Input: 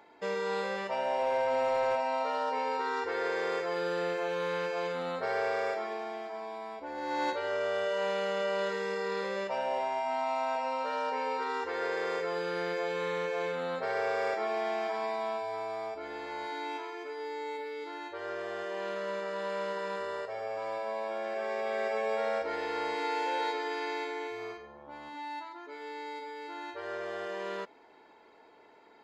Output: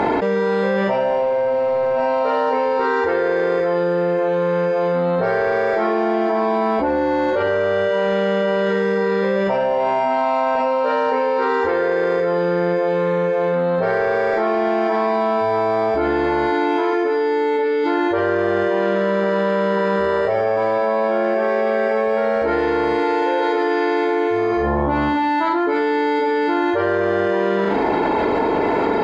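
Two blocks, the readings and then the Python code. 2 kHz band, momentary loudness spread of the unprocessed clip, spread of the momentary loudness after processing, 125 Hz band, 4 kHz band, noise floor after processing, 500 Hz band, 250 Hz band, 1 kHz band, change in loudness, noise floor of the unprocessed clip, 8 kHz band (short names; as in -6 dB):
+12.5 dB, 9 LU, 0 LU, +23.0 dB, +8.0 dB, -19 dBFS, +16.0 dB, +22.5 dB, +13.5 dB, +15.0 dB, -58 dBFS, n/a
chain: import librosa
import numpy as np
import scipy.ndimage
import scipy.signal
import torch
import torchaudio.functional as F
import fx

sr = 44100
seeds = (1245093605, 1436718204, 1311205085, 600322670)

y = fx.lowpass(x, sr, hz=1700.0, slope=6)
y = fx.low_shelf(y, sr, hz=360.0, db=10.0)
y = fx.room_flutter(y, sr, wall_m=6.9, rt60_s=0.29)
y = fx.env_flatten(y, sr, amount_pct=100)
y = y * librosa.db_to_amplitude(5.0)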